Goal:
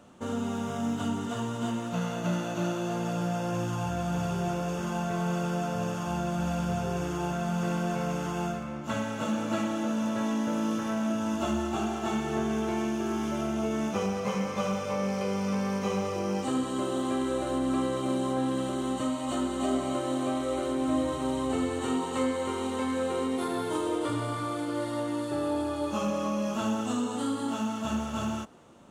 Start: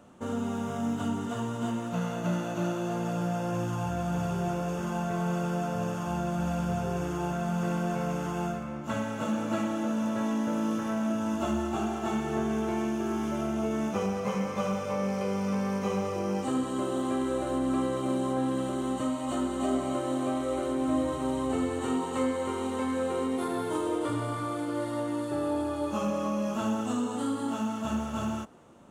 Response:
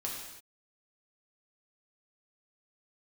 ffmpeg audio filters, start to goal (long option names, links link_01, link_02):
-af "equalizer=frequency=4200:width=0.78:gain=4.5"